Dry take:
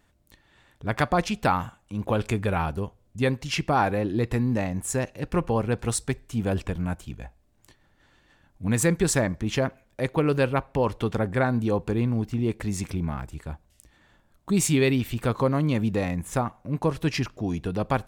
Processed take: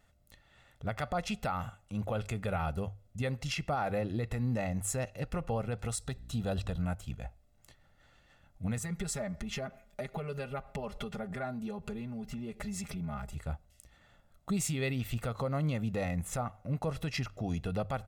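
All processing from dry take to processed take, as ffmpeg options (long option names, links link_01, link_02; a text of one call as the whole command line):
ffmpeg -i in.wav -filter_complex "[0:a]asettb=1/sr,asplit=3[link_01][link_02][link_03];[link_01]atrim=end=6.064[link_04];[link_02]atrim=start=6.06:end=6.82,asetpts=PTS-STARTPTS,afade=type=in:duration=0.004:curve=qsin,afade=type=out:start_time=0.756:duration=0.004:curve=qsin,equalizer=frequency=3900:width_type=o:width=0.23:gain=12,bandreject=frequency=2200:width=5.5,aeval=exprs='val(0)+0.00562*(sin(2*PI*60*n/s)+sin(2*PI*2*60*n/s)/2+sin(2*PI*3*60*n/s)/3+sin(2*PI*4*60*n/s)/4+sin(2*PI*5*60*n/s)/5)':channel_layout=same[link_05];[link_03]atrim=start=6.816[link_06];[link_04][link_05]acrossfade=duration=0.004:curve1=hsin:curve2=qsin[link_07];[link_07][link_06]acrossfade=duration=0.004:curve1=qsin:curve2=hsin,asettb=1/sr,asplit=3[link_08][link_09][link_10];[link_08]atrim=end=8.784[link_11];[link_09]atrim=start=8.78:end=13.36,asetpts=PTS-STARTPTS,afade=type=in:duration=0.004:curve=qsin,afade=type=out:start_time=4.576:duration=0.004:curve=qsin,acompressor=threshold=-34dB:ratio=4:attack=3.2:release=140:knee=1:detection=peak,aecho=1:1:4.9:0.94,atrim=end_sample=201978[link_12];[link_10]atrim=start=13.356[link_13];[link_11][link_12]acrossfade=duration=0.004:curve1=hsin:curve2=qsin[link_14];[link_14][link_13]acrossfade=duration=0.004:curve1=qsin:curve2=hsin,bandreject=frequency=50:width_type=h:width=6,bandreject=frequency=100:width_type=h:width=6,aecho=1:1:1.5:0.54,alimiter=limit=-20dB:level=0:latency=1:release=152,volume=-4dB" out.wav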